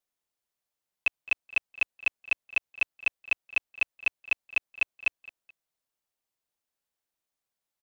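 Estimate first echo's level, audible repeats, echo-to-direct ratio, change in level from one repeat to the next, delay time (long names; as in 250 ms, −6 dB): −20.5 dB, 2, −20.0 dB, −10.0 dB, 214 ms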